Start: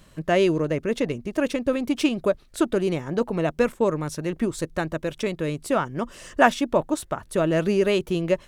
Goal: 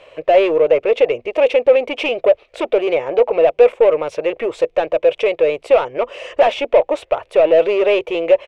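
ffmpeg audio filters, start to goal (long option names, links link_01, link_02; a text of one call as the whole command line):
ffmpeg -i in.wav -filter_complex "[0:a]asplit=2[link_01][link_02];[link_02]highpass=frequency=720:poles=1,volume=27dB,asoftclip=type=tanh:threshold=-2.5dB[link_03];[link_01][link_03]amix=inputs=2:normalize=0,lowpass=frequency=1500:poles=1,volume=-6dB,firequalizer=gain_entry='entry(100,0);entry(180,-17);entry(490,14);entry(920,3);entry(1600,-4);entry(2400,12);entry(4100,-2);entry(13000,-13)':delay=0.05:min_phase=1,volume=-9dB" out.wav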